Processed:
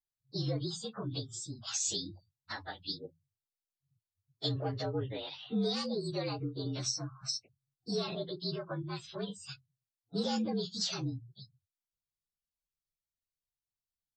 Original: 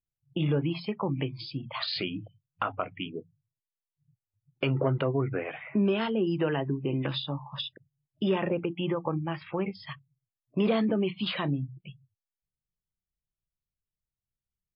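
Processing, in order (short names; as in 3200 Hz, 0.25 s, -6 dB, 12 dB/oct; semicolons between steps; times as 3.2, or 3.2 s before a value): inharmonic rescaling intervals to 115%; speed mistake 24 fps film run at 25 fps; resonant high shelf 2900 Hz +9 dB, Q 1.5; gain -6 dB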